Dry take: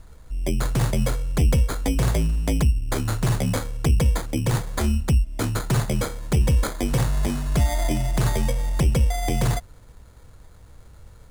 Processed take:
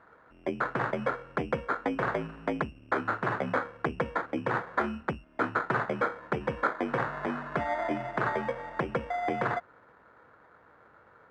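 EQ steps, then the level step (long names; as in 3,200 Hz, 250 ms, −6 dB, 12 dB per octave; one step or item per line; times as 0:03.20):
high-pass filter 320 Hz 12 dB per octave
low-pass with resonance 1,500 Hz, resonance Q 2.5
−1.5 dB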